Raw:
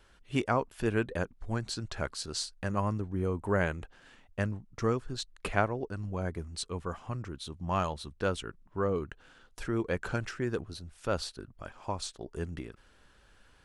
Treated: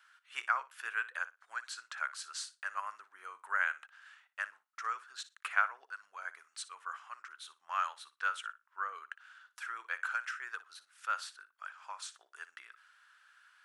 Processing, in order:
dynamic equaliser 4,500 Hz, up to −5 dB, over −56 dBFS, Q 2.4
four-pole ladder high-pass 1,200 Hz, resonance 55%
on a send: flutter between parallel walls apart 10.1 metres, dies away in 0.22 s
on the sum: level +6 dB

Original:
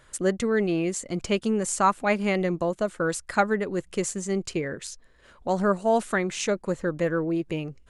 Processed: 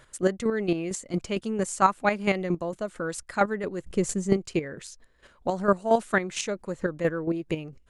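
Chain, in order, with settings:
0:03.84–0:04.33: low-shelf EQ 490 Hz +11.5 dB
square-wave tremolo 4.4 Hz, depth 60%, duty 20%
level +2.5 dB

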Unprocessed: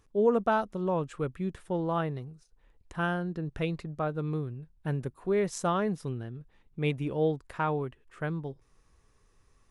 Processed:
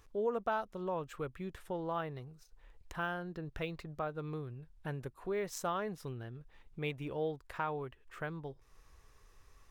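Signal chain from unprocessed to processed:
parametric band 200 Hz −8.5 dB 2 octaves
downward compressor 1.5 to 1, threshold −56 dBFS, peak gain reduction 12 dB
linearly interpolated sample-rate reduction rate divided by 2×
level +5 dB

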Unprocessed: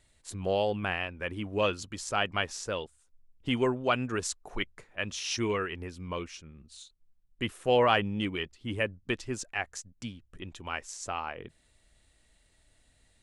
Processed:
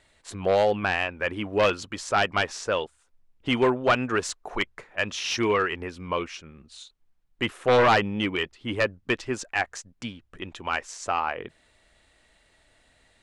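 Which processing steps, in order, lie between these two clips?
wavefolder on the positive side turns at −21 dBFS
mid-hump overdrive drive 13 dB, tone 1,800 Hz, clips at −12 dBFS
level +4.5 dB

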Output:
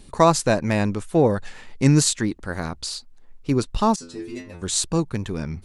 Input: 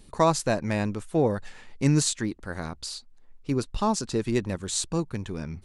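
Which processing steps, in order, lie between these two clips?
0:03.96–0:04.62: stiff-string resonator 84 Hz, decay 0.58 s, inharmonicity 0.002
tape wow and flutter 34 cents
level +5.5 dB

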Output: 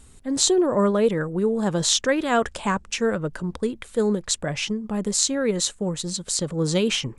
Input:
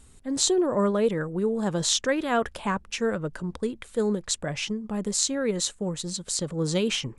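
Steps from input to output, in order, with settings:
0:02.25–0:02.94: low-pass with resonance 7,900 Hz, resonance Q 2.2
level +3.5 dB

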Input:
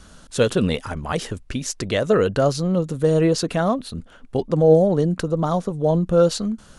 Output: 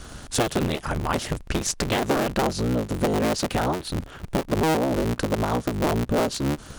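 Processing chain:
sub-harmonics by changed cycles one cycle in 3, inverted
downward compressor 4 to 1, threshold −28 dBFS, peak gain reduction 16 dB
level +6 dB

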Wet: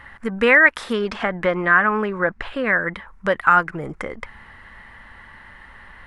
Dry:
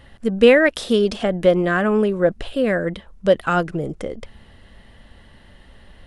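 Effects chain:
flat-topped bell 1,400 Hz +15 dB
in parallel at −0.5 dB: downward compressor, threshold −21 dBFS, peak gain reduction 18.5 dB
0:00.93–0:02.74: on the sum: low-pass filter 6,400 Hz 12 dB per octave
level −8.5 dB

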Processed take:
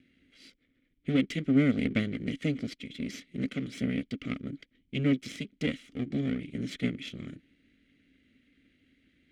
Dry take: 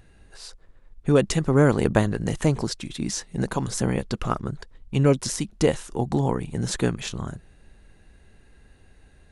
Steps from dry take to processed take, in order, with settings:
lower of the sound and its delayed copy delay 1.5 ms
formant filter i
level +8.5 dB

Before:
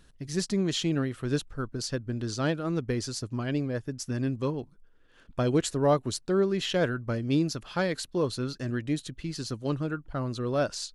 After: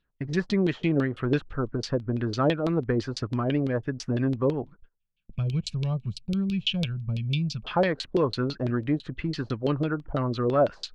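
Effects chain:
auto-filter low-pass saw down 6 Hz 420–3,800 Hz
gain on a spectral selection 0:04.95–0:07.64, 220–2,200 Hz −23 dB
in parallel at +1 dB: downward compressor, threshold −34 dBFS, peak gain reduction 14.5 dB
on the sum: noise gate −44 dBFS, range −26 dB

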